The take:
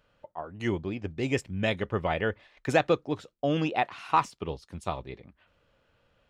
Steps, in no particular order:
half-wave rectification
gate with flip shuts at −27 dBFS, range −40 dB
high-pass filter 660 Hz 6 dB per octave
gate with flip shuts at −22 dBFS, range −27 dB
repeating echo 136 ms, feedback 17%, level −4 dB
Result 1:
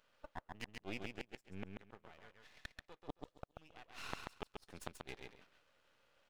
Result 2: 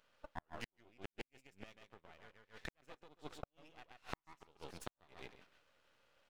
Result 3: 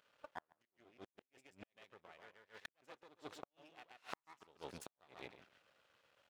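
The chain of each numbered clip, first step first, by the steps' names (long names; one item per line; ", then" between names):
second gate with flip, then high-pass filter, then first gate with flip, then repeating echo, then half-wave rectification
repeating echo, then second gate with flip, then high-pass filter, then half-wave rectification, then first gate with flip
repeating echo, then second gate with flip, then first gate with flip, then half-wave rectification, then high-pass filter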